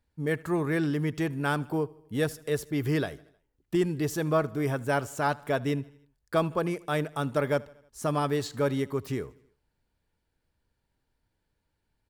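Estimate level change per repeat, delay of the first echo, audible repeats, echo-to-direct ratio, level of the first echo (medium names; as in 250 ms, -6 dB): -5.0 dB, 78 ms, 3, -21.5 dB, -23.0 dB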